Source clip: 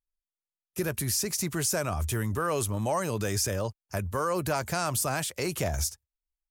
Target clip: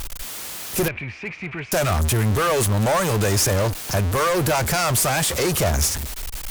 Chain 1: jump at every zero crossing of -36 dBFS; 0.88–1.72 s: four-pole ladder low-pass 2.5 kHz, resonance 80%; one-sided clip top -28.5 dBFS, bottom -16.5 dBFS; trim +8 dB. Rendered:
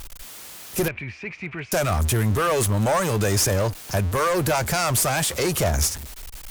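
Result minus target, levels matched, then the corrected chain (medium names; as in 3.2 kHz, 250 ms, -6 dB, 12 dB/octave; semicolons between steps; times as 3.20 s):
jump at every zero crossing: distortion -6 dB
jump at every zero crossing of -28.5 dBFS; 0.88–1.72 s: four-pole ladder low-pass 2.5 kHz, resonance 80%; one-sided clip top -28.5 dBFS, bottom -16.5 dBFS; trim +8 dB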